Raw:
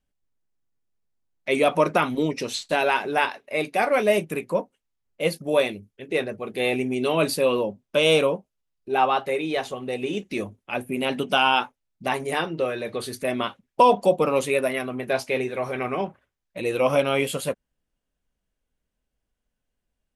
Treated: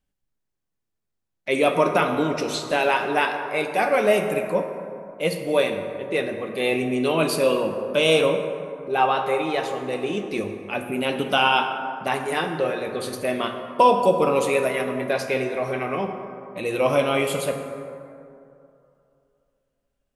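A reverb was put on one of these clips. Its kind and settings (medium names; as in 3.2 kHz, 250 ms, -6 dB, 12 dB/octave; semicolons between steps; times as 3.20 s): plate-style reverb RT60 2.7 s, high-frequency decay 0.4×, DRR 4.5 dB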